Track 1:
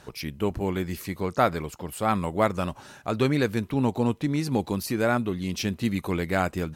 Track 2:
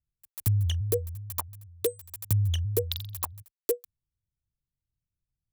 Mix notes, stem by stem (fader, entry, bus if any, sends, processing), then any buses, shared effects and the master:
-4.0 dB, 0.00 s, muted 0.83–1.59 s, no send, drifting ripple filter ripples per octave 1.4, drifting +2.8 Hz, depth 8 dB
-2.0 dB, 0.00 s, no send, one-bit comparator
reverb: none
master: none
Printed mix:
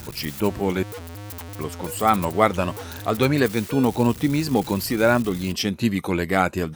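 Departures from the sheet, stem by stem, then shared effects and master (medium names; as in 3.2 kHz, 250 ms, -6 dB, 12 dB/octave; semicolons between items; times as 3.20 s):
stem 1 -4.0 dB -> +4.5 dB; master: extra high-pass 110 Hz 6 dB/octave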